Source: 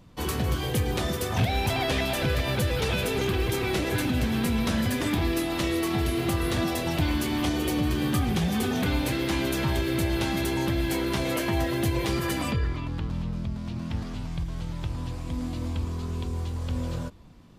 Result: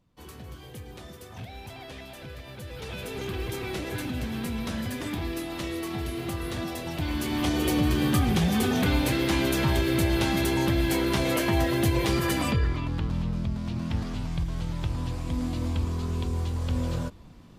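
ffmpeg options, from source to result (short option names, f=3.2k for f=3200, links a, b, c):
-af "volume=2dB,afade=t=in:st=2.57:d=0.83:silence=0.316228,afade=t=in:st=6.96:d=0.73:silence=0.398107"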